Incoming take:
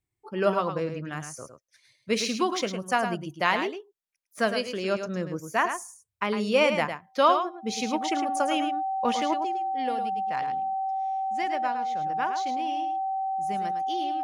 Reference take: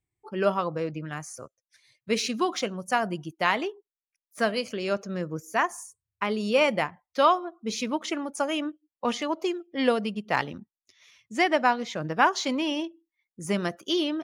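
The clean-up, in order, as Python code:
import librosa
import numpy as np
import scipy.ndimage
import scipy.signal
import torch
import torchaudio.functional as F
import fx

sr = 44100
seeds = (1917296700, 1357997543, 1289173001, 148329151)

y = fx.notch(x, sr, hz=770.0, q=30.0)
y = fx.fix_echo_inverse(y, sr, delay_ms=107, level_db=-8.0)
y = fx.fix_level(y, sr, at_s=9.4, step_db=10.5)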